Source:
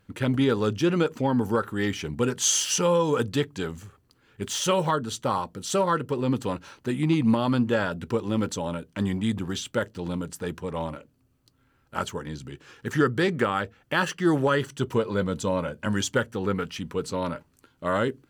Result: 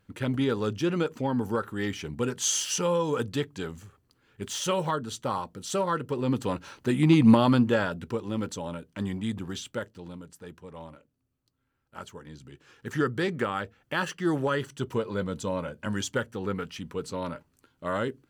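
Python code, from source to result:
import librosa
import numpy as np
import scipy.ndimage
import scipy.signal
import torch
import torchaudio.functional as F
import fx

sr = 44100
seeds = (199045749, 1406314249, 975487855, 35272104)

y = fx.gain(x, sr, db=fx.line((5.91, -4.0), (7.32, 4.5), (8.17, -5.0), (9.65, -5.0), (10.19, -12.5), (11.98, -12.5), (13.0, -4.5)))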